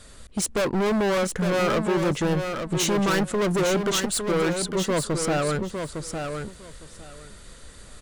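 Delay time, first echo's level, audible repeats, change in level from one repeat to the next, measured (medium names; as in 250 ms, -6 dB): 857 ms, -6.5 dB, 2, -15.5 dB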